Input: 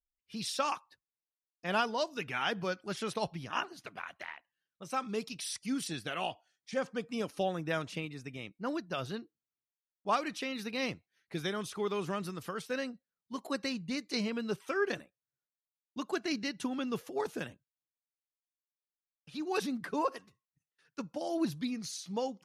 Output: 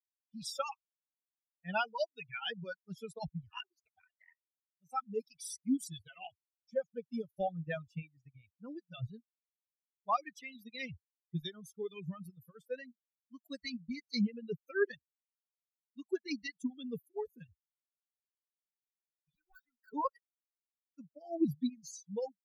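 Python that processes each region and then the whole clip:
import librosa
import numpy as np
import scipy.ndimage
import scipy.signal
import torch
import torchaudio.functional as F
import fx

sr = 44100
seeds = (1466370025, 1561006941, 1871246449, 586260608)

y = fx.chain(x, sr, fx.bandpass_q(hz=1400.0, q=12.0),
    fx.leveller(passes=5), at=(19.35, 19.92))
y = fx.bin_expand(y, sr, power=3.0)
y = fx.dereverb_blind(y, sr, rt60_s=0.58)
y = fx.low_shelf(y, sr, hz=230.0, db=9.5)
y = y * 10.0 ** (2.0 / 20.0)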